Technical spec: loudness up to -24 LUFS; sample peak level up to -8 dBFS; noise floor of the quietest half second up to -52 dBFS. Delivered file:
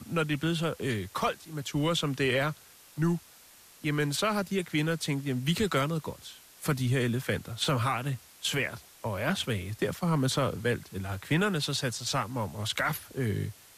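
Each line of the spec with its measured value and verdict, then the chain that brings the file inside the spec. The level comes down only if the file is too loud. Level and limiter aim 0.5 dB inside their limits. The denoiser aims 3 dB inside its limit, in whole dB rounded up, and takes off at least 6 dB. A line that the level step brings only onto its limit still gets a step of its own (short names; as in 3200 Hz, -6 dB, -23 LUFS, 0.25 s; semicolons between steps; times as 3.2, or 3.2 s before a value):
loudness -30.5 LUFS: OK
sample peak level -15.5 dBFS: OK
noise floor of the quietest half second -55 dBFS: OK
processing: none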